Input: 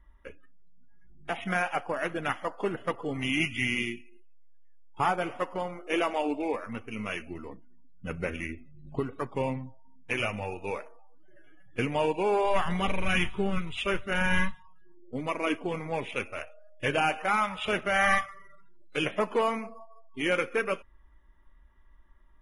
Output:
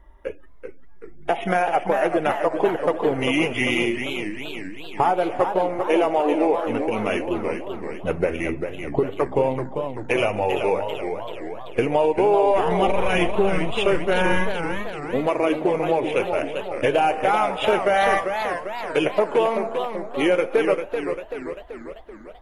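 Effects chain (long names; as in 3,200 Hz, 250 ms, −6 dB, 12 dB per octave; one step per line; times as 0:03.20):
flat-topped bell 540 Hz +9.5 dB
downward compressor 3 to 1, threshold −25 dBFS, peak gain reduction 9.5 dB
feedback echo with a swinging delay time 390 ms, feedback 55%, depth 196 cents, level −7 dB
level +7 dB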